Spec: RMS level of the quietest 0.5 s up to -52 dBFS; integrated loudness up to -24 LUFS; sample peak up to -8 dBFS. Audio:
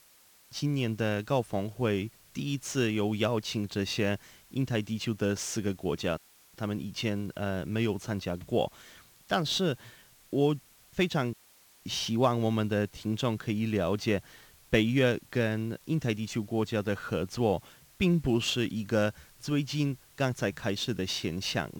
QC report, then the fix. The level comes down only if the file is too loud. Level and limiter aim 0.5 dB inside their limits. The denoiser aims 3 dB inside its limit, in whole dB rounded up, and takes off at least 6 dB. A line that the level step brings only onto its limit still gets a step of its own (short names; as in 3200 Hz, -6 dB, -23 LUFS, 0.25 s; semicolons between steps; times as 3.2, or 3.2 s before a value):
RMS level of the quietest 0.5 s -60 dBFS: OK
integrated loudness -30.5 LUFS: OK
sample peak -12.0 dBFS: OK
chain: none